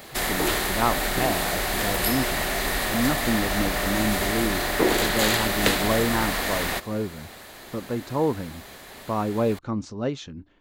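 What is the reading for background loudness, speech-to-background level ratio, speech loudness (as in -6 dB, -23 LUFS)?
-24.0 LUFS, -5.0 dB, -29.0 LUFS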